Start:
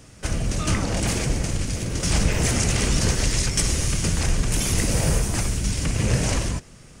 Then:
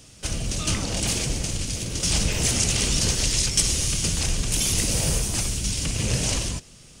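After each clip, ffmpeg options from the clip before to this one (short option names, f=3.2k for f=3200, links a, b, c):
-af "highshelf=f=2.4k:t=q:w=1.5:g=6.5,volume=-4dB"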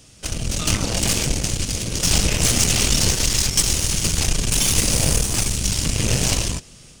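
-af "aeval=exprs='0.501*(cos(1*acos(clip(val(0)/0.501,-1,1)))-cos(1*PI/2))+0.0501*(cos(8*acos(clip(val(0)/0.501,-1,1)))-cos(8*PI/2))':c=same,dynaudnorm=f=300:g=3:m=4dB"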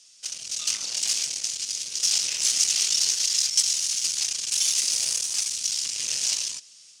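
-af "bandpass=f=5.5k:t=q:w=1.5:csg=0"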